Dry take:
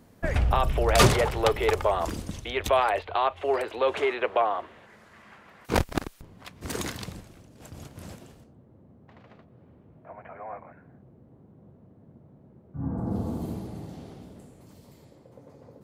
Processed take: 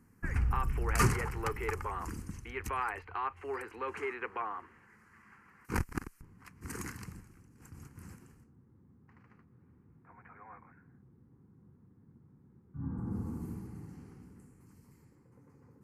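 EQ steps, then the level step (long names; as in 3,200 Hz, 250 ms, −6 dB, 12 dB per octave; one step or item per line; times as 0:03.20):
linear-phase brick-wall low-pass 14,000 Hz
phaser with its sweep stopped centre 1,500 Hz, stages 4
−6.0 dB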